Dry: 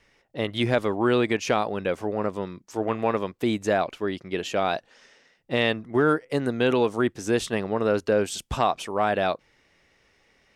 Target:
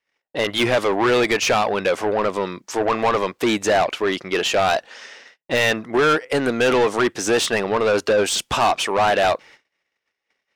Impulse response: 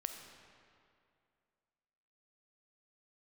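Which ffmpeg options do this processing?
-filter_complex "[0:a]asplit=2[a][b];[b]highpass=f=720:p=1,volume=23dB,asoftclip=type=tanh:threshold=-8dB[c];[a][c]amix=inputs=2:normalize=0,lowpass=f=6.5k:p=1,volume=-6dB,agate=range=-33dB:threshold=-43dB:ratio=16:detection=peak,volume=-1dB"

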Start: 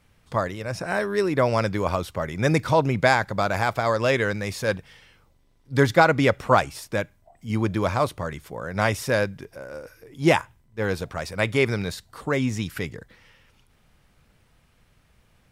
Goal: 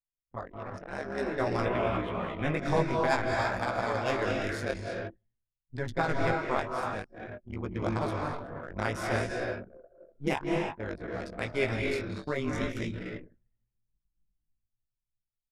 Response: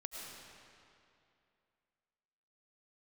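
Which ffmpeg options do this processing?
-filter_complex "[0:a]dynaudnorm=f=420:g=5:m=8.5dB,agate=range=-16dB:threshold=-49dB:ratio=16:detection=peak,tremolo=f=140:d=1[a];[1:a]atrim=start_sample=2205,afade=t=out:st=0.24:d=0.01,atrim=end_sample=11025,asetrate=22932,aresample=44100[b];[a][b]afir=irnorm=-1:irlink=0,asettb=1/sr,asplit=3[c][d][e];[c]atrim=end=5.744[f];[d]atrim=start=5.74:end=6.32,asetpts=PTS-STARTPTS,afade=t=in:d=0.004:c=qsin,afade=t=out:st=0.576:d=0.004:c=qsin,asubboost=boost=9.5:cutoff=210[g];[e]atrim=start=6.316[h];[f][g]acrossfade=d=0.004:c1=hsin:c2=qsin[i];[i][h]acrossfade=d=0.004:c1=qsin:c2=hsin,aecho=1:1:158:0.0841,flanger=delay=16:depth=4.7:speed=0.53,asettb=1/sr,asplit=3[j][k][l];[j]atrim=end=1.654[m];[k]atrim=start=1.65:end=2.58,asetpts=PTS-STARTPTS,afade=t=in:d=0.004:c=qsin,afade=t=out:st=0.926:d=0.004:c=qsin,highshelf=f=3.9k:t=q:w=3:g=-8.5[n];[l]atrim=start=2.576[o];[m][n]acrossfade=d=0.004:c1=hsin:c2=qsin[p];[p][o]acrossfade=d=0.004:c1=qsin:c2=hsin,anlmdn=6.31,volume=-6dB"

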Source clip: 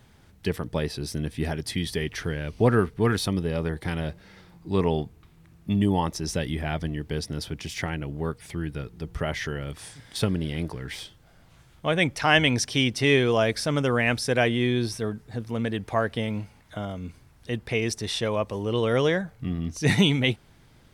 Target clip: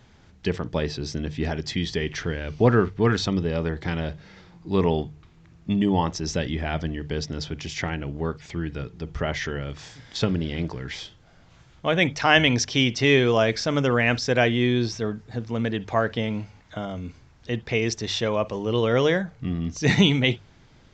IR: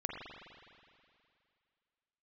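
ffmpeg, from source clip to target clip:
-filter_complex "[0:a]bandreject=f=50:t=h:w=6,bandreject=f=100:t=h:w=6,bandreject=f=150:t=h:w=6,asplit=2[a][b];[1:a]atrim=start_sample=2205,atrim=end_sample=3528[c];[b][c]afir=irnorm=-1:irlink=0,volume=-10dB[d];[a][d]amix=inputs=2:normalize=0,aresample=16000,aresample=44100"

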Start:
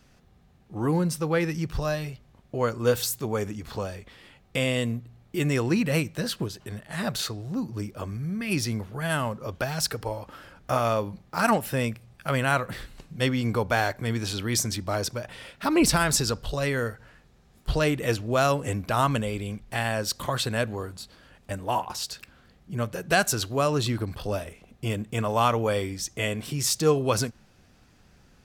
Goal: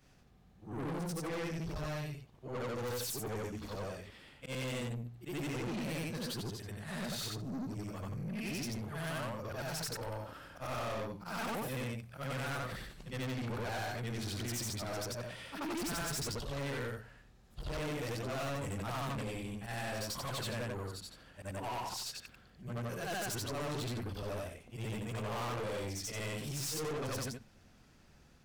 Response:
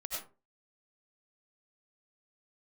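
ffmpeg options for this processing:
-af "afftfilt=real='re':imag='-im':win_size=8192:overlap=0.75,aeval=exprs='(tanh(63.1*val(0)+0.15)-tanh(0.15))/63.1':c=same"

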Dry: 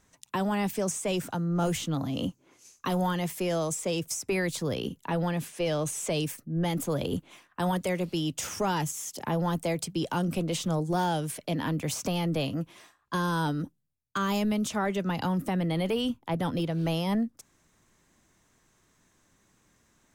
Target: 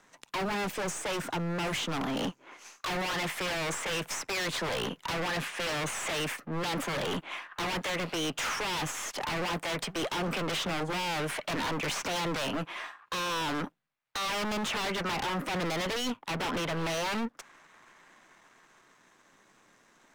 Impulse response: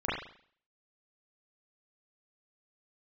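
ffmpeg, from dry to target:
-filter_complex "[0:a]aeval=exprs='if(lt(val(0),0),0.447*val(0),val(0))':c=same,equalizer=f=66:t=o:w=0.86:g=-13.5,acrossover=split=130|760|3200[a][b][c][d];[c]dynaudnorm=f=210:g=21:m=10dB[e];[a][b][e][d]amix=inputs=4:normalize=0,alimiter=limit=-20dB:level=0:latency=1:release=64,asplit=2[f][g];[g]highpass=f=720:p=1,volume=17dB,asoftclip=type=tanh:threshold=-20dB[h];[f][h]amix=inputs=2:normalize=0,lowpass=f=2k:p=1,volume=-6dB,aeval=exprs='0.0376*(abs(mod(val(0)/0.0376+3,4)-2)-1)':c=same,volume=1.5dB"

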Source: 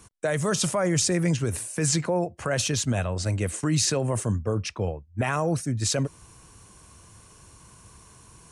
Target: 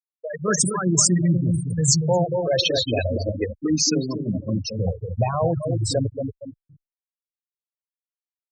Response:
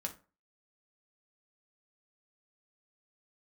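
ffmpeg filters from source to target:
-filter_complex "[0:a]bandreject=f=50:t=h:w=6,bandreject=f=100:t=h:w=6,bandreject=f=150:t=h:w=6,bandreject=f=200:t=h:w=6,bandreject=f=250:t=h:w=6,bandreject=f=300:t=h:w=6,bandreject=f=350:t=h:w=6,bandreject=f=400:t=h:w=6,bandreject=f=450:t=h:w=6,bandreject=f=500:t=h:w=6,aeval=exprs='sgn(val(0))*max(abs(val(0))-0.00224,0)':c=same,asettb=1/sr,asplit=3[a][b][c];[a]atrim=end=2.344[d];[b]atrim=start=2.34:end=4.7,asetpts=PTS-STARTPTS,afade=t=in:d=0.004:c=qsin,afade=t=out:st=2.356:d=0.004:c=qsin,equalizer=f=125:t=o:w=1:g=-9,equalizer=f=1k:t=o:w=1:g=-4,equalizer=f=4k:t=o:w=1:g=5,equalizer=f=8k:t=o:w=1:g=-9[e];[c]atrim=start=4.696[f];[d][e]acrossfade=d=0.004:c1=hsin:c2=qsin[g];[g][f]acrossfade=d=0.004:c1=qsin:c2=hsin,asplit=2[h][i];[i]adelay=231,lowpass=f=3.7k:p=1,volume=-4.5dB,asplit=2[j][k];[k]adelay=231,lowpass=f=3.7k:p=1,volume=0.44,asplit=2[l][m];[m]adelay=231,lowpass=f=3.7k:p=1,volume=0.44,asplit=2[n][o];[o]adelay=231,lowpass=f=3.7k:p=1,volume=0.44,asplit=2[p][q];[q]adelay=231,lowpass=f=3.7k:p=1,volume=0.44[r];[h][j][l][n][p][r]amix=inputs=6:normalize=0,dynaudnorm=f=100:g=7:m=16.5dB,highshelf=f=3.8k:g=6.5,afftfilt=real='re*gte(hypot(re,im),0.501)':imag='im*gte(hypot(re,im),0.501)':win_size=1024:overlap=0.75,asplit=2[s][t];[t]afreqshift=-0.32[u];[s][u]amix=inputs=2:normalize=1,volume=-3.5dB"

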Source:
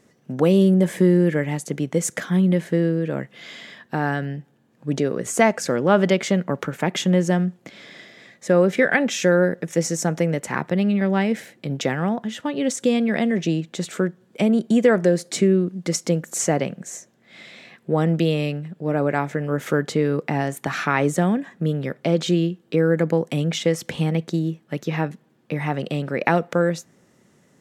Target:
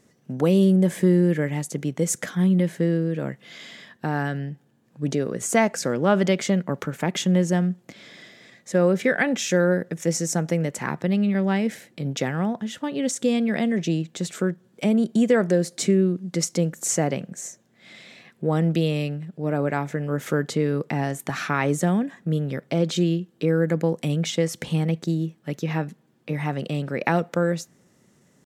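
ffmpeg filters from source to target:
-af "bass=f=250:g=3,treble=f=4k:g=4,atempo=0.97,volume=-3.5dB"

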